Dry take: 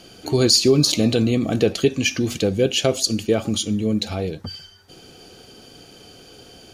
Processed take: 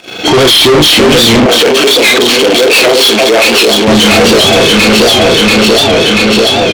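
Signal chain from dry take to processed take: knee-point frequency compression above 1.8 kHz 1.5:1; doubling 33 ms -6 dB; gate -43 dBFS, range -14 dB; echo whose repeats swap between lows and highs 343 ms, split 1 kHz, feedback 80%, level -5.5 dB; level rider gain up to 8 dB; overdrive pedal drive 32 dB, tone 5.5 kHz, clips at -1 dBFS; 1.46–3.88 s: high-pass 320 Hz 12 dB/octave; waveshaping leveller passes 2; warped record 78 rpm, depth 100 cents; trim -1.5 dB

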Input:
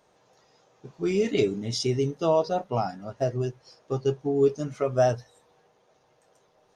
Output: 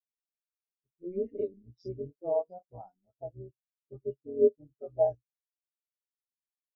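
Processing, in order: phase dispersion highs, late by 58 ms, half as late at 1.8 kHz; AM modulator 180 Hz, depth 85%; spectral contrast expander 2.5:1

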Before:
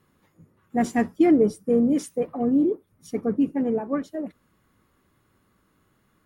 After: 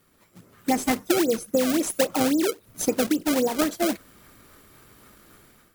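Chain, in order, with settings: speed mistake 44.1 kHz file played as 48 kHz; in parallel at -4 dB: decimation with a swept rate 28×, swing 160% 3.7 Hz; on the sum: compression 16:1, threshold -27 dBFS, peak gain reduction 18 dB; peaking EQ 130 Hz -6 dB 3 oct; level rider gain up to 11 dB; treble shelf 4.7 kHz +10 dB

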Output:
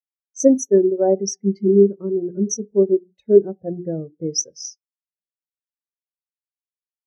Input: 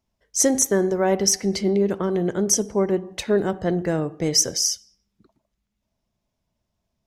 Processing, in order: hum notches 60/120/180/240/300/360/420 Hz; spectral contrast expander 2.5:1; trim +4.5 dB

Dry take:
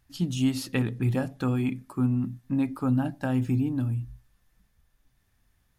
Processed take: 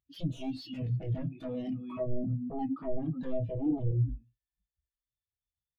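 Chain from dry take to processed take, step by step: high-pass 43 Hz 12 dB/octave; peaking EQ 3.4 kHz +14.5 dB 1.2 oct; speakerphone echo 300 ms, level -14 dB; compression 12:1, threshold -32 dBFS, peak gain reduction 14.5 dB; sine folder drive 17 dB, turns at -19.5 dBFS; feedback comb 160 Hz, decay 0.18 s, harmonics all, mix 60%; on a send at -20 dB: reverberation, pre-delay 40 ms; on the sum: spectral contrast expander 2.5:1

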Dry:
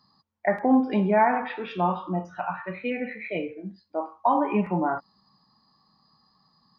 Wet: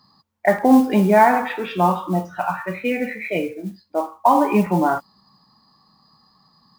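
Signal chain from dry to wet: modulation noise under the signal 27 dB; trim +7 dB

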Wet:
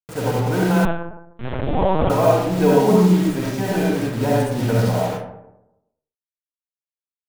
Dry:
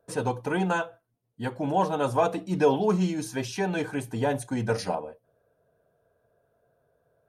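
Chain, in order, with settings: local Wiener filter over 15 samples; bass shelf 220 Hz +7 dB; bit crusher 6-bit; reverberation RT60 0.90 s, pre-delay 25 ms, DRR -5.5 dB; 0.85–2.10 s: LPC vocoder at 8 kHz pitch kept

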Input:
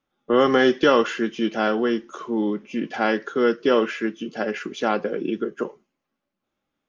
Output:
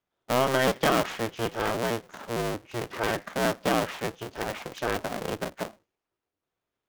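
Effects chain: cycle switcher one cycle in 2, inverted; trim -6.5 dB

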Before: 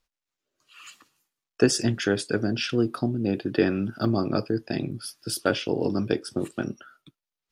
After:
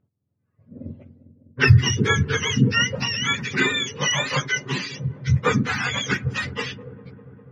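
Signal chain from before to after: spectrum inverted on a logarithmic axis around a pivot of 820 Hz; feedback echo behind a low-pass 201 ms, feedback 79%, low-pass 590 Hz, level -14 dB; level-controlled noise filter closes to 2.2 kHz, open at -25.5 dBFS; trim +6 dB

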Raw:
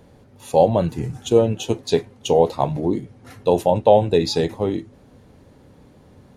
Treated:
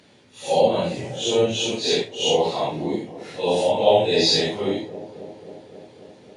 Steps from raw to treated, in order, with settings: phase randomisation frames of 200 ms; high-pass 79 Hz; on a send: feedback echo behind a low-pass 269 ms, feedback 74%, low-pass 910 Hz, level -16 dB; on the sum: resampled via 22.05 kHz; frequency weighting D; trim -2 dB

